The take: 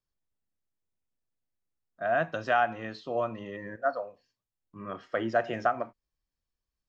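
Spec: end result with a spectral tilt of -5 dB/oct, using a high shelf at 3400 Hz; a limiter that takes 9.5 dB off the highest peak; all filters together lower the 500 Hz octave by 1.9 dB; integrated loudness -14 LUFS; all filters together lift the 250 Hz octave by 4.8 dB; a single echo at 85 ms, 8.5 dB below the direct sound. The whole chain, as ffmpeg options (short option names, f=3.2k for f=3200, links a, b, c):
-af "equalizer=f=250:t=o:g=7.5,equalizer=f=500:t=o:g=-4,highshelf=f=3.4k:g=-3.5,alimiter=limit=-24dB:level=0:latency=1,aecho=1:1:85:0.376,volume=21.5dB"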